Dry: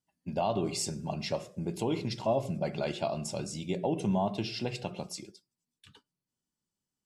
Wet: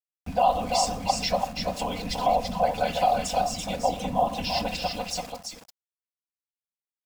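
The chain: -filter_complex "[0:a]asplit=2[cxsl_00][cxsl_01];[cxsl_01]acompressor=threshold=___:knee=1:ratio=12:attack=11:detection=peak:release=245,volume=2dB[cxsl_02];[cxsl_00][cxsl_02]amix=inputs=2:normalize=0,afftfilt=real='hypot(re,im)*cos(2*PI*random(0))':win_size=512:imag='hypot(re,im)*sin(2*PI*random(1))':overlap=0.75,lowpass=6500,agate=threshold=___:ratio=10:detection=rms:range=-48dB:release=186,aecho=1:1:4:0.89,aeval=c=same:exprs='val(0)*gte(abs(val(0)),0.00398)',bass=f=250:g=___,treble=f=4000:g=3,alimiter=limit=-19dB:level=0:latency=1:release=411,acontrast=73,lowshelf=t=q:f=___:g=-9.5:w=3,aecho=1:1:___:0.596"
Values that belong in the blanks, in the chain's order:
-38dB, -49dB, 9, 500, 336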